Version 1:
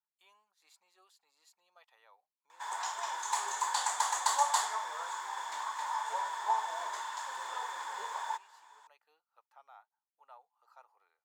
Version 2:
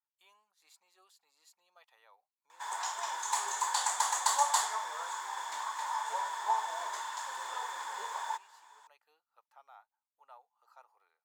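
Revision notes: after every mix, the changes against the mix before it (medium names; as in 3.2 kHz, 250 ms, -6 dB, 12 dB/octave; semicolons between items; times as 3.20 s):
master: add treble shelf 6.5 kHz +4.5 dB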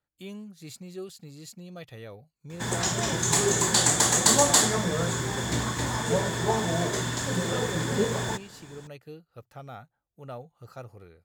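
speech +5.0 dB; master: remove ladder high-pass 870 Hz, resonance 75%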